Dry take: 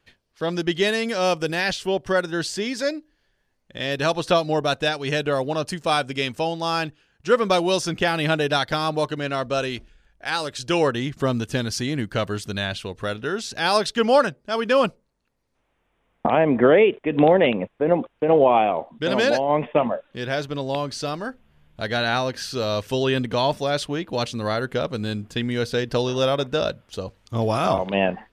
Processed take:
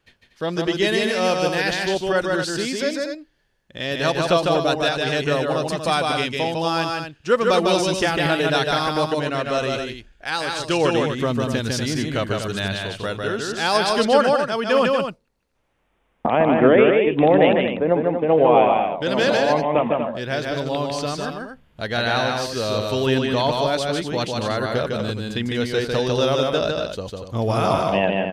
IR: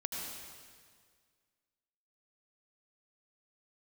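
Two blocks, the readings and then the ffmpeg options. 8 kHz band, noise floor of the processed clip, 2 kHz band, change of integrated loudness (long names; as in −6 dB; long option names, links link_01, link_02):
+2.0 dB, −66 dBFS, +2.0 dB, +2.0 dB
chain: -af "aecho=1:1:151.6|239.1:0.708|0.398"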